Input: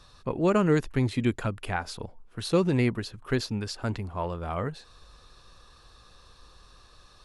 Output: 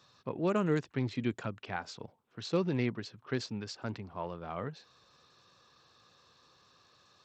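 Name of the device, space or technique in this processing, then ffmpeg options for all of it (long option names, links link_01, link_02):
Bluetooth headset: -af "highpass=frequency=110:width=0.5412,highpass=frequency=110:width=1.3066,aresample=16000,aresample=44100,volume=-7dB" -ar 32000 -c:a sbc -b:a 64k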